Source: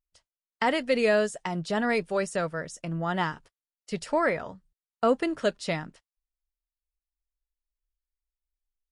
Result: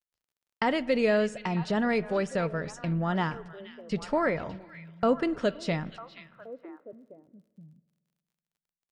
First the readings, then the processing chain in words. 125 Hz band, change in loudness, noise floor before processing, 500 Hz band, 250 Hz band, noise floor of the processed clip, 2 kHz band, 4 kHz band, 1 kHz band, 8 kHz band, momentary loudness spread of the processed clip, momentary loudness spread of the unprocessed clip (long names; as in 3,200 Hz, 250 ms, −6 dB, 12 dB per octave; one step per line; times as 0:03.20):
+3.5 dB, −0.5 dB, below −85 dBFS, −1.0 dB, +2.0 dB, below −85 dBFS, −2.5 dB, −2.5 dB, −2.0 dB, −7.0 dB, 19 LU, 11 LU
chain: low-pass filter 6,000 Hz 12 dB per octave
noise gate −49 dBFS, range −34 dB
low-shelf EQ 270 Hz +8 dB
in parallel at +0.5 dB: downward compressor, threshold −33 dBFS, peak gain reduction 16 dB
on the sum: echo through a band-pass that steps 474 ms, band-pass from 2,900 Hz, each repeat −1.4 octaves, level −9.5 dB
spring reverb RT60 1.6 s, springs 47 ms, chirp 70 ms, DRR 19.5 dB
surface crackle 32 per second −57 dBFS
level −5 dB